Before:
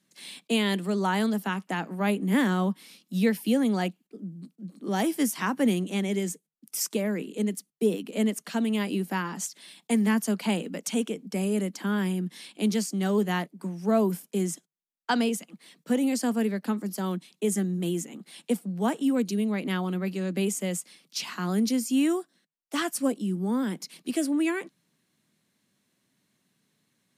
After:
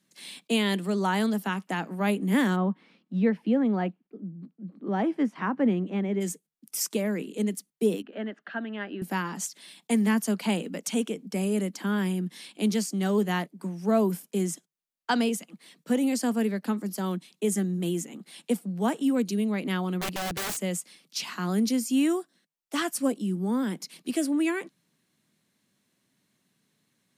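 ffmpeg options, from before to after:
-filter_complex "[0:a]asplit=3[a][b][c];[a]afade=t=out:st=2.55:d=0.02[d];[b]lowpass=1.7k,afade=t=in:st=2.55:d=0.02,afade=t=out:st=6.2:d=0.02[e];[c]afade=t=in:st=6.2:d=0.02[f];[d][e][f]amix=inputs=3:normalize=0,asettb=1/sr,asplit=3[g][h][i];[g]atrim=end=8.024[j];[h]atrim=start=8.02:end=9.02,asetpts=PTS-STARTPTS,afade=t=in:d=0.004:c=qsin,afade=t=out:st=0.996:d=0.004:c=qsin,highpass=370,equalizer=f=470:t=q:w=4:g=-8,equalizer=f=1k:t=q:w=4:g=-8,equalizer=f=1.6k:t=q:w=4:g=8,equalizer=f=2.3k:t=q:w=4:g=-10,lowpass=f=2.6k:w=0.5412,lowpass=f=2.6k:w=1.3066[k];[i]atrim=start=9.016[l];[j][k]acrossfade=d=0.004:c1=hsin:c2=qsin[m];[m][l]acrossfade=d=0.004:c1=qsin:c2=hsin,asettb=1/sr,asplit=3[n][o][p];[n]atrim=end=20.014[q];[o]atrim=start=20.01:end=20.57,asetpts=PTS-STARTPTS,afade=t=in:d=0.004:c=qsin,afade=t=out:st=0.556:d=0.004:c=qsin,aeval=exprs='(mod(21.1*val(0)+1,2)-1)/21.1':c=same[r];[p]atrim=start=20.566[s];[q][r]acrossfade=d=0.004:c1=hsin:c2=qsin[t];[t][s]acrossfade=d=0.004:c1=qsin:c2=hsin"

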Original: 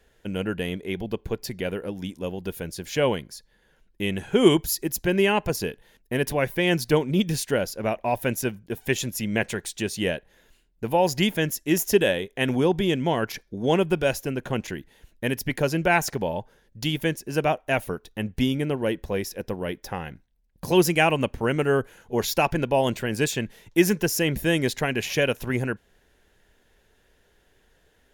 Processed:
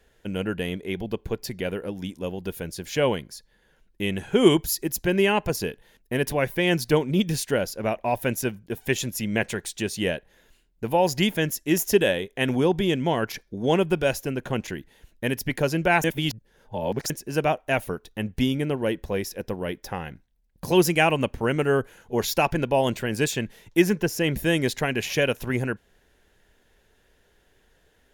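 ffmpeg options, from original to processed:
-filter_complex "[0:a]asettb=1/sr,asplit=3[a][b][c];[a]atrim=end=23.824[d];[b]atrim=start=23.82:end=24.24,asetpts=PTS-STARTPTS,afade=t=in:d=0.004:c=qsin,afade=t=out:st=0.416:d=0.004:c=qsin,highshelf=f=4k:g=-8[e];[c]atrim=start=24.236[f];[d][e]acrossfade=d=0.004:c1=hsin:c2=qsin[g];[g][f]acrossfade=d=0.004:c1=qsin:c2=hsin,asplit=3[h][i][j];[h]atrim=end=16.042[k];[i]atrim=start=16.038:end=17.102,asetpts=PTS-STARTPTS,areverse[l];[j]atrim=start=17.098[m];[k][l]acrossfade=d=0.004:c1=hsin:c2=hsin[n];[n][m]acrossfade=d=0.004:c1=hsin:c2=hsin"

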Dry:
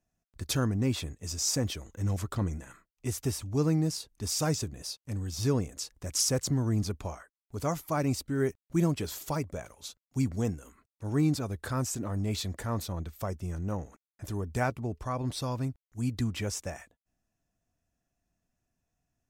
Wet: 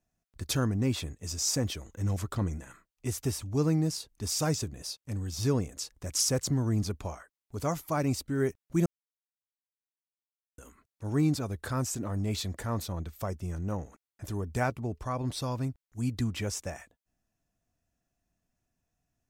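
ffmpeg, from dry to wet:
-filter_complex "[0:a]asplit=3[a][b][c];[a]atrim=end=8.86,asetpts=PTS-STARTPTS,afade=t=out:st=8.856:d=0.004:c=hsin[d];[b]atrim=start=8.86:end=10.58,asetpts=PTS-STARTPTS,volume=0[e];[c]atrim=start=10.58,asetpts=PTS-STARTPTS,afade=t=in:d=0.004:c=hsin[f];[d][e][f]concat=n=3:v=0:a=1"

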